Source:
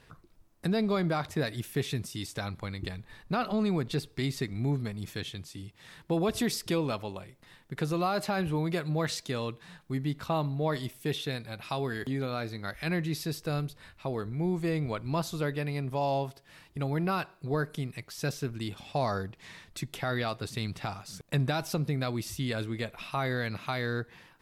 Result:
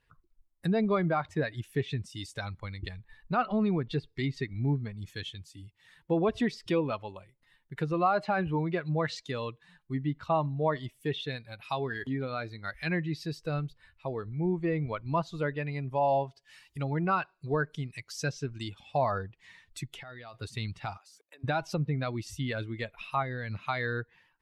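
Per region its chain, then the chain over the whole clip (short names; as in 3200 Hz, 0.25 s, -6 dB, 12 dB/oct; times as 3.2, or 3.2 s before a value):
16.08–18.7 bell 6200 Hz +5 dB 1.1 oct + mismatched tape noise reduction encoder only
19.94–20.34 LPF 9300 Hz + compressor 5:1, threshold -38 dBFS
20.97–21.44 HPF 300 Hz 24 dB/oct + compressor 3:1, threshold -47 dBFS
23.22–23.62 compressor 4:1, threshold -33 dBFS + low shelf 370 Hz +5 dB
whole clip: per-bin expansion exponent 1.5; treble ducked by the level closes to 2700 Hz, closed at -29 dBFS; bell 1100 Hz +4.5 dB 2 oct; gain +2 dB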